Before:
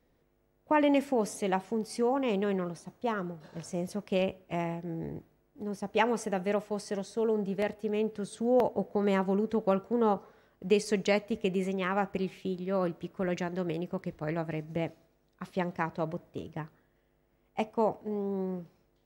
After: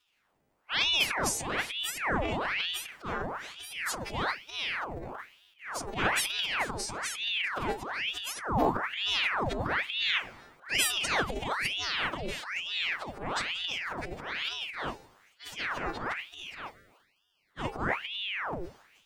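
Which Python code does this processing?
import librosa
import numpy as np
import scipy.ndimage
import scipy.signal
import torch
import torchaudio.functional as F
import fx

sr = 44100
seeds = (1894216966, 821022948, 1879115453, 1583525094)

y = fx.freq_snap(x, sr, grid_st=2)
y = fx.high_shelf(y, sr, hz=7300.0, db=-10.0)
y = fx.room_flutter(y, sr, wall_m=6.9, rt60_s=0.2)
y = fx.transient(y, sr, attack_db=-7, sustain_db=12)
y = fx.spec_erase(y, sr, start_s=16.71, length_s=0.79, low_hz=460.0, high_hz=1300.0)
y = fx.ring_lfo(y, sr, carrier_hz=1700.0, swing_pct=90, hz=1.1)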